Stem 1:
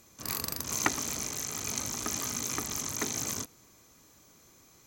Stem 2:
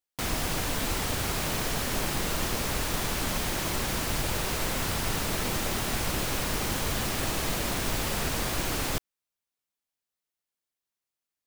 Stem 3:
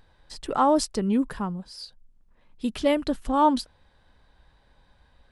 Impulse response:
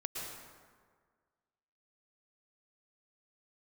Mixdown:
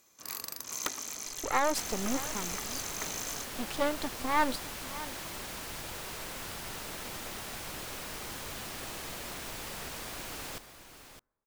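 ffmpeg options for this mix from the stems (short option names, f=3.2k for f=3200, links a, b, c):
-filter_complex "[0:a]equalizer=f=80:w=0.39:g=-7.5,aeval=exprs='(mod(4.22*val(0)+1,2)-1)/4.22':c=same,acrusher=bits=6:mode=log:mix=0:aa=0.000001,volume=-5dB[a];[1:a]adelay=1600,volume=-10.5dB,asplit=3[b][c][d];[c]volume=-19dB[e];[d]volume=-10.5dB[f];[2:a]aeval=exprs='max(val(0),0)':c=same,adelay=950,volume=-1dB,asplit=2[g][h];[h]volume=-15.5dB[i];[3:a]atrim=start_sample=2205[j];[e][j]afir=irnorm=-1:irlink=0[k];[f][i]amix=inputs=2:normalize=0,aecho=0:1:612:1[l];[a][b][g][k][l]amix=inputs=5:normalize=0,lowshelf=f=300:g=-7.5"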